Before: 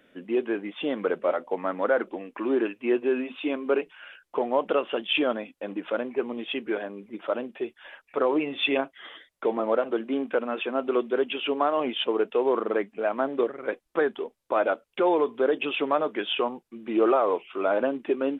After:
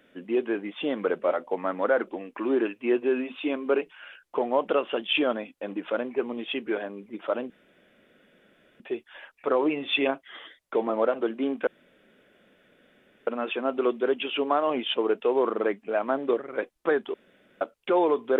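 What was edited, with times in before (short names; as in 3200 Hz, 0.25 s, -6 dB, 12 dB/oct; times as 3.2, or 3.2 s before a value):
7.5 insert room tone 1.30 s
10.37 insert room tone 1.60 s
14.24–14.71 room tone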